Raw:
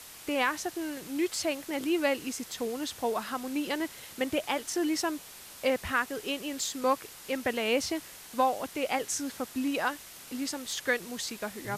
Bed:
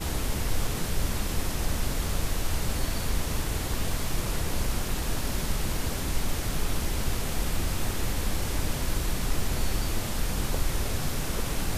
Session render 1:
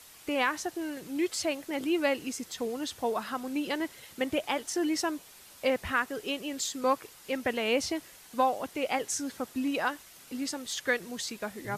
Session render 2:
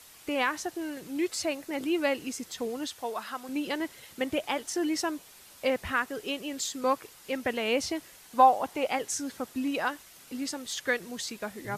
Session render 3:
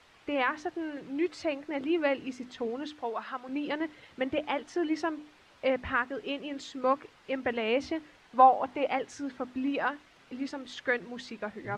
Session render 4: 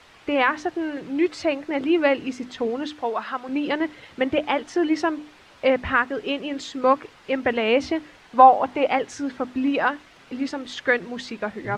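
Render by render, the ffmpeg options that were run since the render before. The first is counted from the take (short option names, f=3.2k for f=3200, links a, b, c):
-af "afftdn=nr=6:nf=-48"
-filter_complex "[0:a]asettb=1/sr,asplit=3[a][b][c];[a]atrim=end=1.254[d];[b]atrim=start=1.25:end=1.84,asetpts=PTS-STARTPTS,afade=t=in:d=0.004:c=qsin,afade=t=out:st=0.586:d=0.004:c=qsin,bandreject=f=3.2k:w=12[e];[c]atrim=start=1.836[f];[d][e]acrossfade=d=0.004:c1=hsin:c2=qsin[g];[g][f]acrossfade=d=0.004:c1=qsin:c2=hsin,asettb=1/sr,asplit=3[h][i][j];[h]atrim=end=2.874[k];[i]atrim=start=2.87:end=3.49,asetpts=PTS-STARTPTS,afade=t=in:d=0.004:c=qsin,afade=t=out:st=0.616:d=0.004:c=qsin,lowshelf=f=430:g=-11.5[l];[j]atrim=start=3.486[m];[k][l]acrossfade=d=0.004:c1=hsin:c2=qsin[n];[n][m]acrossfade=d=0.004:c1=qsin:c2=hsin,asettb=1/sr,asplit=3[o][p][q];[o]atrim=end=8.354[r];[p]atrim=start=8.35:end=8.87,asetpts=PTS-STARTPTS,afade=t=in:d=0.004:c=qsin,afade=t=out:st=0.516:d=0.004:c=qsin,equalizer=f=850:t=o:w=0.79:g=9.5[s];[q]atrim=start=8.866[t];[r][s]acrossfade=d=0.004:c1=hsin:c2=qsin[u];[u][t]acrossfade=d=0.004:c1=qsin:c2=hsin"
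-af "lowpass=2.7k,bandreject=f=50:t=h:w=6,bandreject=f=100:t=h:w=6,bandreject=f=150:t=h:w=6,bandreject=f=200:t=h:w=6,bandreject=f=250:t=h:w=6,bandreject=f=300:t=h:w=6"
-af "volume=8.5dB,alimiter=limit=-2dB:level=0:latency=1"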